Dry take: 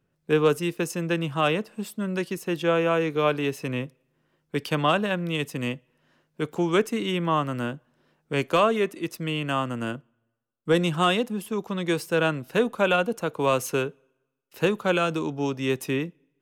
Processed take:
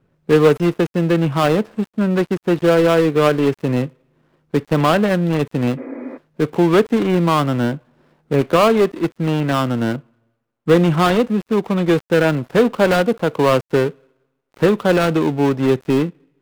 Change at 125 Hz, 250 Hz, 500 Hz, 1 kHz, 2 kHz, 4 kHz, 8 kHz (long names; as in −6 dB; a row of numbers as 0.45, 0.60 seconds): +10.5, +10.5, +9.0, +6.5, +4.5, +3.5, +2.5 decibels